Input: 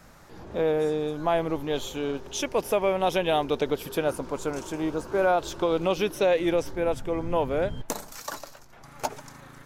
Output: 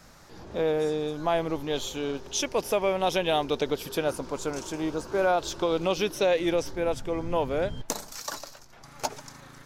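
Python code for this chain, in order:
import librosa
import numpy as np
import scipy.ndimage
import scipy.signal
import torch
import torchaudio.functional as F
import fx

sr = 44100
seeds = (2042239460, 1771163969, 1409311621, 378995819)

y = fx.peak_eq(x, sr, hz=5100.0, db=6.5, octaves=1.2)
y = y * 10.0 ** (-1.5 / 20.0)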